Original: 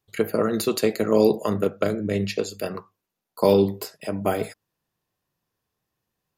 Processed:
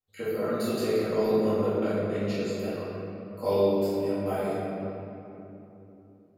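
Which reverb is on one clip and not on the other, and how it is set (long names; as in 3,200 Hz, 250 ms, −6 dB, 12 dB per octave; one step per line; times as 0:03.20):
rectangular room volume 160 cubic metres, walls hard, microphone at 2.1 metres
level −19 dB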